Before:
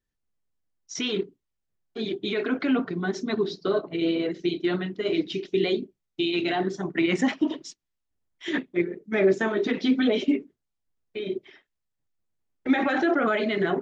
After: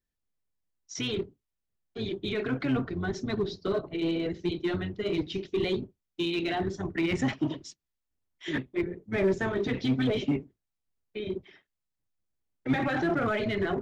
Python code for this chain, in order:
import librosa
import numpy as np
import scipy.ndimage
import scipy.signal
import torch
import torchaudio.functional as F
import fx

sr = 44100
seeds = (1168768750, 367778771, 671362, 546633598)

p1 = fx.octave_divider(x, sr, octaves=1, level_db=-4.0)
p2 = 10.0 ** (-21.0 / 20.0) * (np.abs((p1 / 10.0 ** (-21.0 / 20.0) + 3.0) % 4.0 - 2.0) - 1.0)
p3 = p1 + F.gain(torch.from_numpy(p2), -11.0).numpy()
y = F.gain(torch.from_numpy(p3), -6.0).numpy()